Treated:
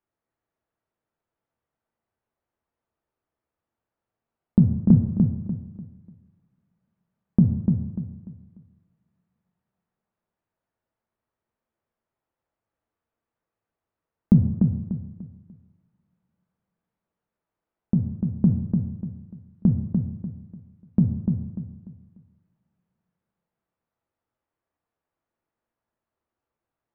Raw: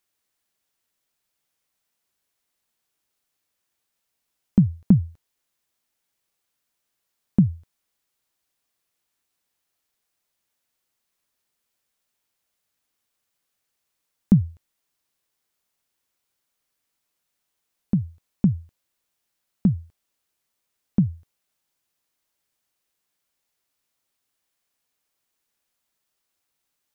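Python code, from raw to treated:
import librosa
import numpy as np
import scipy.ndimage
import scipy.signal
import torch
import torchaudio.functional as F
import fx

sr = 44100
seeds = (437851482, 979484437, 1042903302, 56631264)

p1 = scipy.signal.sosfilt(scipy.signal.butter(2, 1100.0, 'lowpass', fs=sr, output='sos'), x)
p2 = p1 + fx.echo_feedback(p1, sr, ms=295, feedback_pct=32, wet_db=-5.0, dry=0)
y = fx.rev_double_slope(p2, sr, seeds[0], early_s=0.83, late_s=3.0, knee_db=-28, drr_db=4.5)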